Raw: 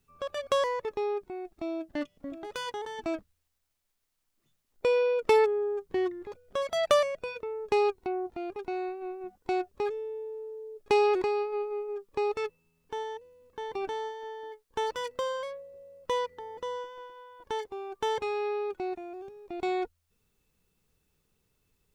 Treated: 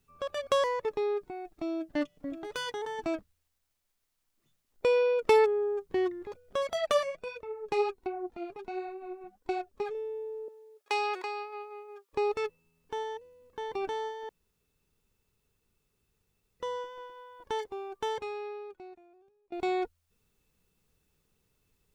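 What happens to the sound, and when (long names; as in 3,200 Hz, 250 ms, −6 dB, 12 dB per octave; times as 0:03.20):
0:00.84–0:03.07: comb filter 6.7 ms, depth 39%
0:06.73–0:09.95: flanger 1.4 Hz, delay 1.1 ms, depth 6.2 ms, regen +31%
0:10.48–0:12.13: high-pass filter 830 Hz
0:14.29–0:16.60: fill with room tone
0:17.74–0:19.52: fade out quadratic, to −23 dB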